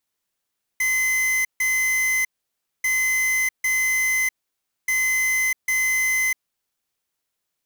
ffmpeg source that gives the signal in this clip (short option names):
-f lavfi -i "aevalsrc='0.0891*(2*lt(mod(2050*t,1),0.5)-1)*clip(min(mod(mod(t,2.04),0.8),0.65-mod(mod(t,2.04),0.8))/0.005,0,1)*lt(mod(t,2.04),1.6)':d=6.12:s=44100"